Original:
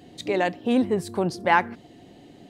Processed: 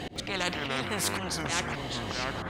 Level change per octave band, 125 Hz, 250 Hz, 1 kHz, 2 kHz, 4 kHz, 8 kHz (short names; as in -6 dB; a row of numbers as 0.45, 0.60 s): -1.5, -10.5, -9.5, -4.0, +6.0, +11.0 dB